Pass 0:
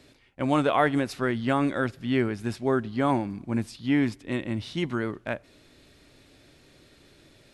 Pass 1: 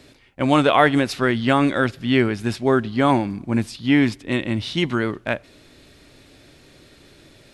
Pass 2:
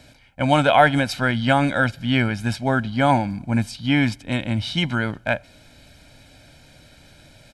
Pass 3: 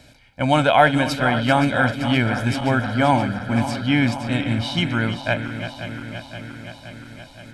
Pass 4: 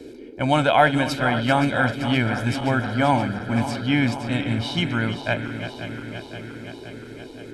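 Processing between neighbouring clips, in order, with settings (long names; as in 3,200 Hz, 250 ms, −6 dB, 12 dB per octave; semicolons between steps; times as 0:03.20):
dynamic equaliser 3,400 Hz, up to +5 dB, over −46 dBFS, Q 0.87; level +6.5 dB
comb filter 1.3 ms, depth 73%; level −1 dB
feedback delay that plays each chunk backwards 261 ms, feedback 81%, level −11 dB
noise in a band 240–460 Hz −39 dBFS; level −2 dB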